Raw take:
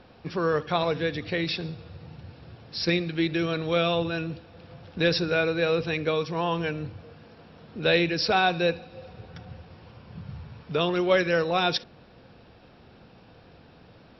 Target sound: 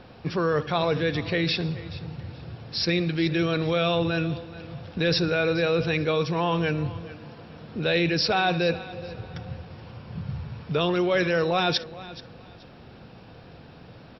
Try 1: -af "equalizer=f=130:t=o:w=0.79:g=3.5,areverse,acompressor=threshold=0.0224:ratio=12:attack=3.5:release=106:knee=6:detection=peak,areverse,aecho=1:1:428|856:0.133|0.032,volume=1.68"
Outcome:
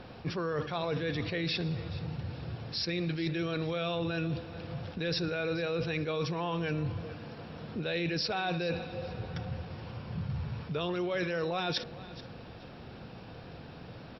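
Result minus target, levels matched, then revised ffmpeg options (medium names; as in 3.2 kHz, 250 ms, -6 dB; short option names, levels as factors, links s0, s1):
compression: peak gain reduction +10 dB
-af "equalizer=f=130:t=o:w=0.79:g=3.5,areverse,acompressor=threshold=0.0794:ratio=12:attack=3.5:release=106:knee=6:detection=peak,areverse,aecho=1:1:428|856:0.133|0.032,volume=1.68"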